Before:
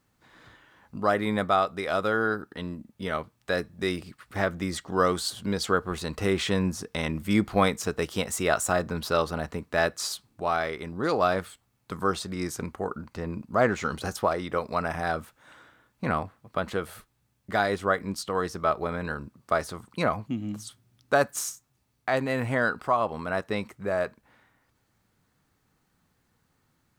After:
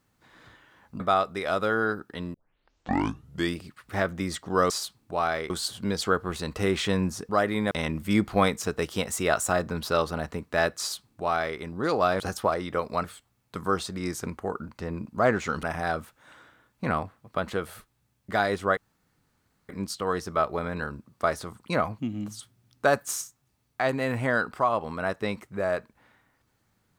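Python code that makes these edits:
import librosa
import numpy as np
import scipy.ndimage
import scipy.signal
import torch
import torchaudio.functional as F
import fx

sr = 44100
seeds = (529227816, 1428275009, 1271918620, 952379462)

y = fx.edit(x, sr, fx.move(start_s=1.0, length_s=0.42, to_s=6.91),
    fx.tape_start(start_s=2.76, length_s=1.22),
    fx.duplicate(start_s=9.99, length_s=0.8, to_s=5.12),
    fx.move(start_s=13.99, length_s=0.84, to_s=11.4),
    fx.insert_room_tone(at_s=17.97, length_s=0.92), tone=tone)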